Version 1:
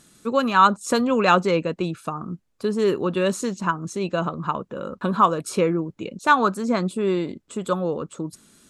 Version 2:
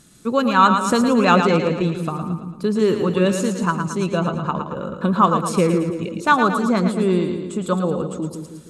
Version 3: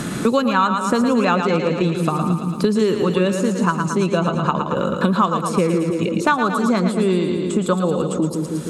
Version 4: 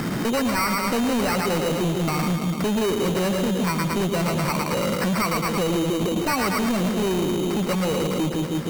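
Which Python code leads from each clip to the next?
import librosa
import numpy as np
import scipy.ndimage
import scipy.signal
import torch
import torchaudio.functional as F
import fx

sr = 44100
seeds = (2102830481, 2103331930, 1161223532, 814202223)

y1 = fx.bass_treble(x, sr, bass_db=6, treble_db=1)
y1 = fx.echo_split(y1, sr, split_hz=450.0, low_ms=157, high_ms=112, feedback_pct=52, wet_db=-6.5)
y1 = y1 * 10.0 ** (1.0 / 20.0)
y2 = fx.low_shelf(y1, sr, hz=61.0, db=-7.0)
y2 = fx.band_squash(y2, sr, depth_pct=100)
y3 = fx.sample_hold(y2, sr, seeds[0], rate_hz=3400.0, jitter_pct=0)
y3 = np.clip(y3, -10.0 ** (-20.0 / 20.0), 10.0 ** (-20.0 / 20.0))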